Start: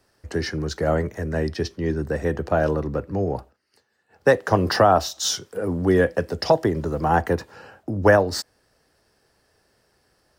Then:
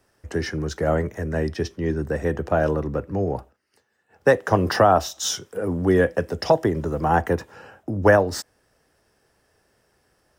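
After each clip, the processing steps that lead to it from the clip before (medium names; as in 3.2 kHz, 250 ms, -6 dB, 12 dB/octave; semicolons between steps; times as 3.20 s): peaking EQ 4.4 kHz -8 dB 0.3 oct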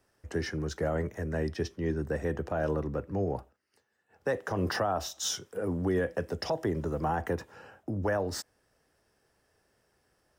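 peak limiter -13.5 dBFS, peak gain reduction 10 dB; trim -6.5 dB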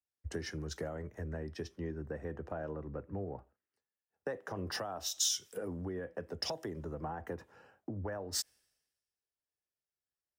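compression 8:1, threshold -37 dBFS, peak gain reduction 13 dB; three bands expanded up and down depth 100%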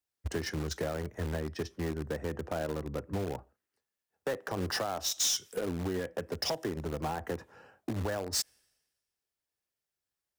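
in parallel at -4 dB: word length cut 6-bit, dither none; on the sum: saturation -29.5 dBFS, distortion -12 dB; trim +4.5 dB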